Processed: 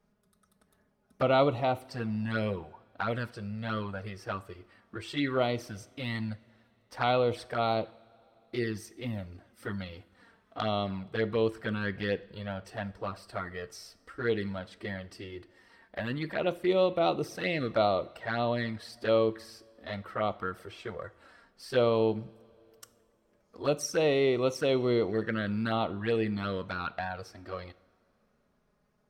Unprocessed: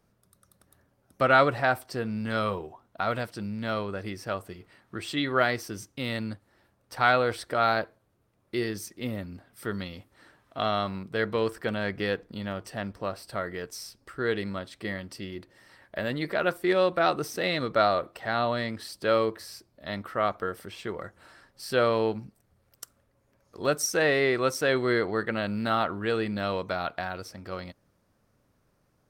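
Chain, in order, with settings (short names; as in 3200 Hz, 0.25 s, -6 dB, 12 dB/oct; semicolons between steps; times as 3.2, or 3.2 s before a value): envelope flanger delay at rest 4.9 ms, full sweep at -22.5 dBFS; high shelf 6900 Hz -10 dB; two-slope reverb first 0.56 s, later 3.3 s, from -18 dB, DRR 15 dB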